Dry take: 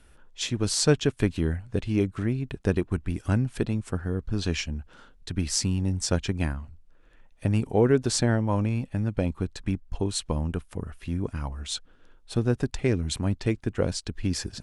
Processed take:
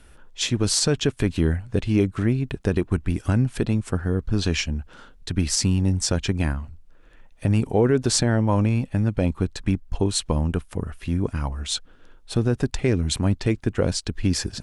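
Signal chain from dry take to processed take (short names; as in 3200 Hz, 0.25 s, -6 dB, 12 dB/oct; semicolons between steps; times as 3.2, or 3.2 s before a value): limiter -14.5 dBFS, peak gain reduction 8.5 dB; gain +5.5 dB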